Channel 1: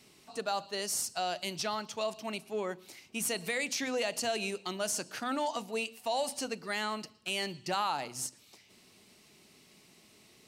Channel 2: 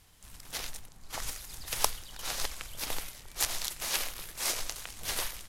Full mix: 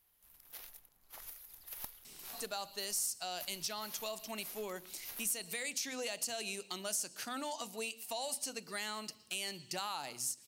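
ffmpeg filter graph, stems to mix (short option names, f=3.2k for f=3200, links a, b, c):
-filter_complex "[0:a]crystalizer=i=3:c=0,adelay=2050,volume=-2dB[a];[1:a]bass=f=250:g=-8,treble=f=4k:g=-3,aexciter=amount=5.1:drive=8.3:freq=11k,aeval=exprs='clip(val(0),-1,0.158)':c=same,volume=-15.5dB[b];[a][b]amix=inputs=2:normalize=0,acompressor=threshold=-43dB:ratio=2"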